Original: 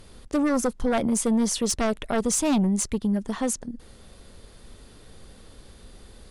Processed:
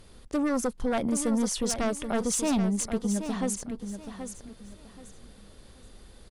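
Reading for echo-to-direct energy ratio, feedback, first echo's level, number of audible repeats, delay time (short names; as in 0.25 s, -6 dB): -8.5 dB, 26%, -9.0 dB, 3, 0.779 s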